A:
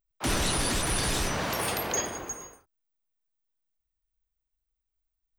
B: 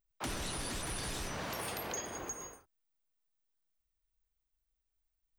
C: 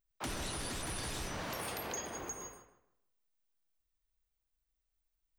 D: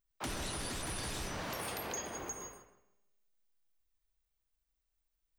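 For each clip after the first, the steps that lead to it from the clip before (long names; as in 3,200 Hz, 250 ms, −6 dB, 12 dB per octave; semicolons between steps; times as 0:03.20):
downward compressor 4 to 1, threshold −37 dBFS, peak gain reduction 11.5 dB; level −1 dB
feedback echo with a low-pass in the loop 155 ms, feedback 27%, low-pass 3,200 Hz, level −10 dB; level −1 dB
tuned comb filter 200 Hz, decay 1.3 s, mix 50%; level +6 dB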